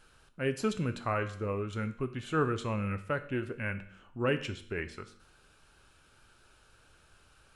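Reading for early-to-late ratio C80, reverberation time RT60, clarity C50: 16.5 dB, 0.60 s, 13.5 dB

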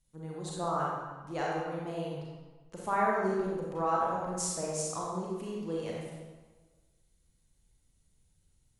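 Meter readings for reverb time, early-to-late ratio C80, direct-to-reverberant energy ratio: 1.4 s, 1.5 dB, -4.5 dB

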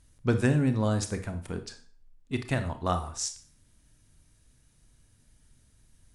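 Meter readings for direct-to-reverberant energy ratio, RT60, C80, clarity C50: 8.0 dB, 0.45 s, 17.0 dB, 12.0 dB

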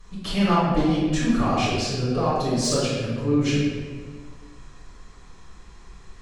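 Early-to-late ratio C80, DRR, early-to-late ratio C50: 1.0 dB, -11.0 dB, -2.0 dB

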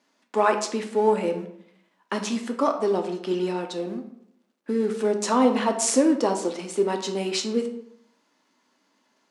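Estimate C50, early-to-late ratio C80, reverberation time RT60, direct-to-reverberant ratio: 9.5 dB, 12.5 dB, 0.65 s, 4.0 dB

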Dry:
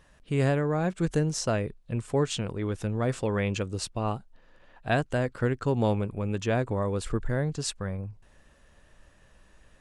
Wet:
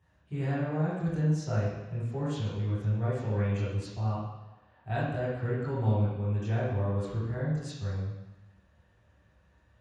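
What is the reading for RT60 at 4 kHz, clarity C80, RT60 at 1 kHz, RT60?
1.2 s, 3.0 dB, 1.2 s, 1.1 s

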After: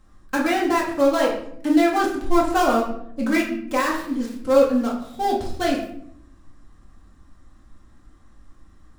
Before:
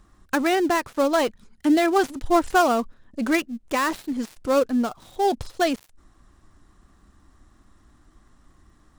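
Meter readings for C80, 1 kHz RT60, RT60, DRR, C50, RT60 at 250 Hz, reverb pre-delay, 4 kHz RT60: 9.0 dB, 0.60 s, 0.65 s, -4.0 dB, 5.0 dB, 1.3 s, 4 ms, 0.45 s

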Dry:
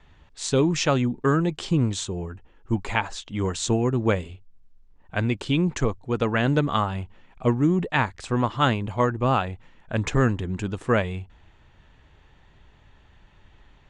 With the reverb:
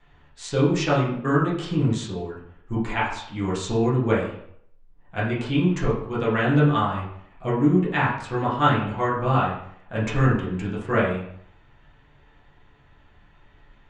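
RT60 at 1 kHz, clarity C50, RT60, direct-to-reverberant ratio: 0.65 s, 4.5 dB, 0.65 s, -8.0 dB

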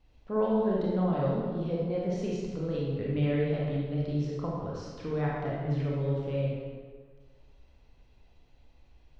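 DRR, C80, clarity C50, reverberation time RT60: -5.0 dB, 0.5 dB, -2.0 dB, 1.6 s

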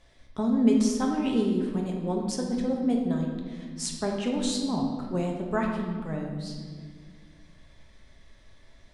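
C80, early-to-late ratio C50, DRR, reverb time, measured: 5.0 dB, 3.0 dB, -0.5 dB, 1.8 s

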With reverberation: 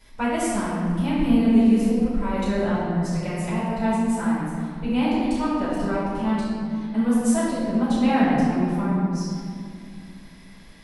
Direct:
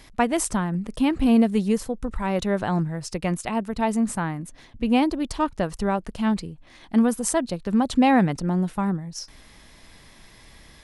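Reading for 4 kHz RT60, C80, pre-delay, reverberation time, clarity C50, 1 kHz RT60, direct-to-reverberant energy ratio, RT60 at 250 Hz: 1.4 s, -0.5 dB, 3 ms, 2.4 s, -3.0 dB, 2.1 s, -12.0 dB, 3.3 s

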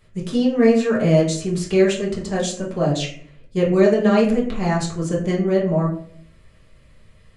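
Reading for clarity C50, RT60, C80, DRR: 7.0 dB, 0.55 s, 10.5 dB, -5.5 dB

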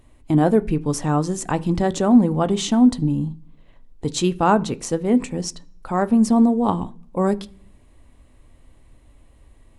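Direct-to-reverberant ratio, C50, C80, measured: 10.5 dB, 22.0 dB, 26.5 dB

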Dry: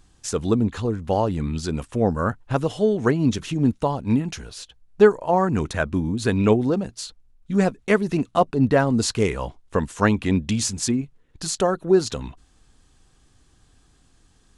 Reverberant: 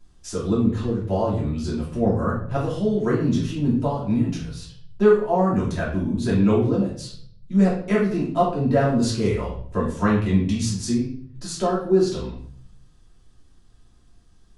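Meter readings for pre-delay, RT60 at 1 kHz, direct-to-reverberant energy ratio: 3 ms, 0.50 s, -8.0 dB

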